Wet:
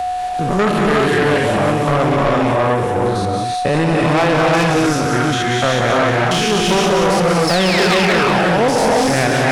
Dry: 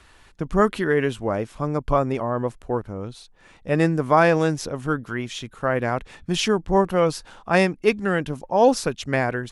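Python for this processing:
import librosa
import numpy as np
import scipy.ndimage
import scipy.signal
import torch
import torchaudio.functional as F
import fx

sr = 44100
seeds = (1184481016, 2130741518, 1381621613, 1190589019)

p1 = fx.spec_steps(x, sr, hold_ms=100)
p2 = p1 + 10.0 ** (-33.0 / 20.0) * np.sin(2.0 * np.pi * 730.0 * np.arange(len(p1)) / sr)
p3 = fx.spec_paint(p2, sr, seeds[0], shape='fall', start_s=7.47, length_s=0.83, low_hz=340.0, high_hz=5500.0, level_db=-29.0)
p4 = fx.rev_gated(p3, sr, seeds[1], gate_ms=400, shape='rising', drr_db=-3.0)
p5 = fx.over_compress(p4, sr, threshold_db=-18.0, ratio=-1.0)
p6 = p4 + (p5 * 10.0 ** (0.5 / 20.0))
p7 = fx.peak_eq(p6, sr, hz=110.0, db=4.5, octaves=1.2)
p8 = 10.0 ** (-14.5 / 20.0) * np.tanh(p7 / 10.0 ** (-14.5 / 20.0))
p9 = fx.low_shelf(p8, sr, hz=220.0, db=-7.5)
p10 = p9 + fx.echo_wet_highpass(p9, sr, ms=181, feedback_pct=51, hz=2000.0, wet_db=-5.5, dry=0)
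p11 = fx.band_squash(p10, sr, depth_pct=40)
y = p11 * 10.0 ** (5.5 / 20.0)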